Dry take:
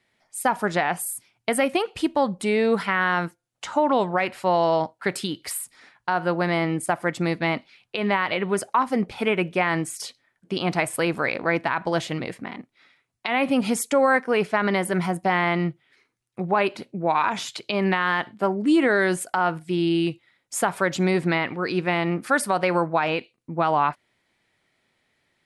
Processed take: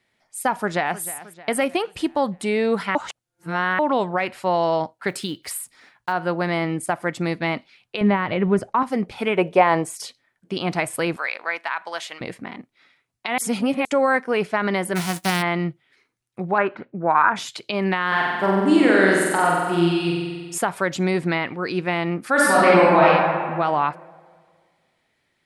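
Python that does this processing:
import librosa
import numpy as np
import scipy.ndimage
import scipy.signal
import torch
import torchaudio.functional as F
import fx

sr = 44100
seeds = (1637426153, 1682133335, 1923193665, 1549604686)

y = fx.echo_throw(x, sr, start_s=0.54, length_s=0.48, ms=310, feedback_pct=55, wet_db=-16.0)
y = fx.block_float(y, sr, bits=7, at=(5.07, 6.11), fade=0.02)
y = fx.riaa(y, sr, side='playback', at=(8.01, 8.83))
y = fx.band_shelf(y, sr, hz=650.0, db=9.5, octaves=1.7, at=(9.37, 9.99))
y = fx.highpass(y, sr, hz=910.0, slope=12, at=(11.16, 12.21))
y = fx.envelope_flatten(y, sr, power=0.3, at=(14.95, 15.41), fade=0.02)
y = fx.lowpass_res(y, sr, hz=1500.0, q=3.2, at=(16.58, 17.36))
y = fx.room_flutter(y, sr, wall_m=8.0, rt60_s=1.5, at=(18.07, 20.58))
y = fx.reverb_throw(y, sr, start_s=22.32, length_s=0.74, rt60_s=1.9, drr_db=-8.0)
y = fx.edit(y, sr, fx.reverse_span(start_s=2.95, length_s=0.84),
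    fx.reverse_span(start_s=13.38, length_s=0.47), tone=tone)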